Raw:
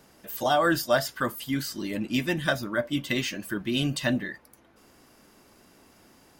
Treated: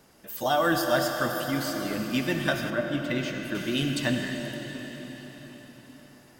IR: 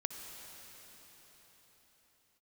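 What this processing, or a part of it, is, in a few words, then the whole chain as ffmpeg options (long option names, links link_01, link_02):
cathedral: -filter_complex "[1:a]atrim=start_sample=2205[link_01];[0:a][link_01]afir=irnorm=-1:irlink=0,asettb=1/sr,asplit=3[link_02][link_03][link_04];[link_02]atrim=end=2.704[link_05];[link_03]atrim=start=2.7:end=3.55,asetpts=PTS-STARTPTS,afade=type=in:duration=0.004:curve=qsin,afade=type=out:start_time=0.846:duration=0.004:curve=qsin,highshelf=frequency=3300:gain=-10[link_06];[link_04]atrim=start=3.546[link_07];[link_05][link_06]acrossfade=duration=0.004:curve1=hsin:curve2=qsin[link_08];[link_08][link_07]acrossfade=duration=0.004:curve1=qsin:curve2=hsin"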